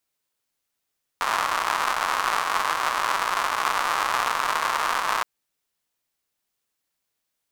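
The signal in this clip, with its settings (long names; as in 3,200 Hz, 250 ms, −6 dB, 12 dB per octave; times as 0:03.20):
rain-like ticks over hiss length 4.02 s, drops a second 220, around 1,100 Hz, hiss −26 dB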